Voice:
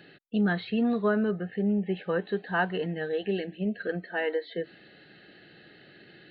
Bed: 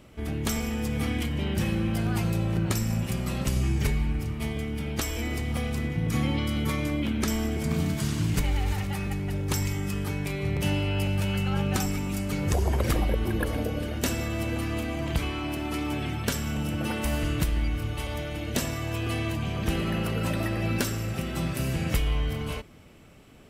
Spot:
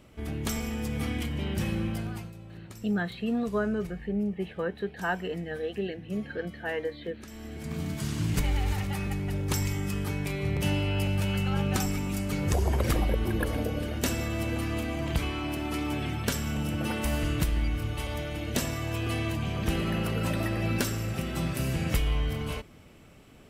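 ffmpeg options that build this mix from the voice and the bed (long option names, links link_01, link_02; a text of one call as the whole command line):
ffmpeg -i stem1.wav -i stem2.wav -filter_complex "[0:a]adelay=2500,volume=-3dB[link_01];[1:a]volume=15dB,afade=type=out:start_time=1.83:duration=0.49:silence=0.158489,afade=type=in:start_time=7.3:duration=1.14:silence=0.125893[link_02];[link_01][link_02]amix=inputs=2:normalize=0" out.wav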